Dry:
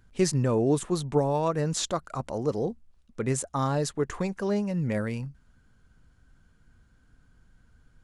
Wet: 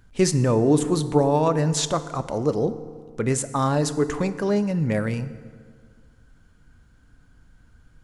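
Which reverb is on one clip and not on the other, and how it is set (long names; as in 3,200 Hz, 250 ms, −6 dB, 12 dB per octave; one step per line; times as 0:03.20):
feedback delay network reverb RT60 1.9 s, low-frequency decay 1.05×, high-frequency decay 0.6×, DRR 11.5 dB
level +5 dB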